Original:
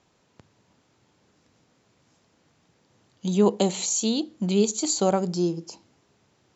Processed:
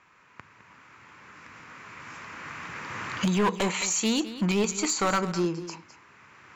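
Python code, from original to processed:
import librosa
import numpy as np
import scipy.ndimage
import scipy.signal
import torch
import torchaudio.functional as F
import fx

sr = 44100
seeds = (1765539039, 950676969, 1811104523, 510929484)

p1 = fx.recorder_agc(x, sr, target_db=-14.0, rise_db_per_s=7.9, max_gain_db=30)
p2 = fx.band_shelf(p1, sr, hz=1600.0, db=16.0, octaves=1.7)
p3 = np.clip(10.0 ** (16.5 / 20.0) * p2, -1.0, 1.0) / 10.0 ** (16.5 / 20.0)
p4 = p3 + fx.echo_single(p3, sr, ms=210, db=-13.5, dry=0)
y = p4 * 10.0 ** (-3.0 / 20.0)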